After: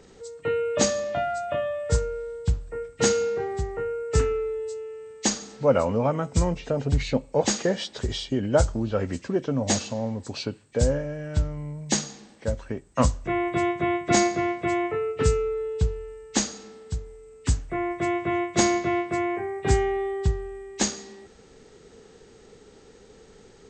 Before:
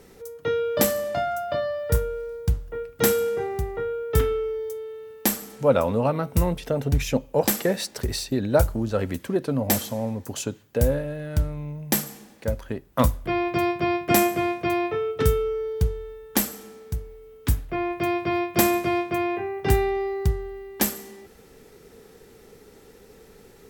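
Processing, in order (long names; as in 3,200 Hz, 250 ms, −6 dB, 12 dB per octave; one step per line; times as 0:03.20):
hearing-aid frequency compression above 1,800 Hz 1.5 to 1
level −1 dB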